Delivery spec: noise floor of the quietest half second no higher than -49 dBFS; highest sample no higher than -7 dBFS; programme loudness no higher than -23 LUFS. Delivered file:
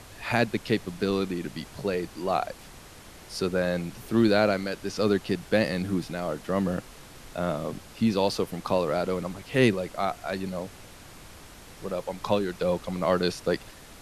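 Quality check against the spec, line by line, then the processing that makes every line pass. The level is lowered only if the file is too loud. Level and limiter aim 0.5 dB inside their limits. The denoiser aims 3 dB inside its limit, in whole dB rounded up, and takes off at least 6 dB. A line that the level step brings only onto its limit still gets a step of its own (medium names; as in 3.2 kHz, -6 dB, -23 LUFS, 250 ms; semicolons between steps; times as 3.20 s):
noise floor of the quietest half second -47 dBFS: fail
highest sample -8.0 dBFS: pass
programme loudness -28.0 LUFS: pass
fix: noise reduction 6 dB, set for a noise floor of -47 dBFS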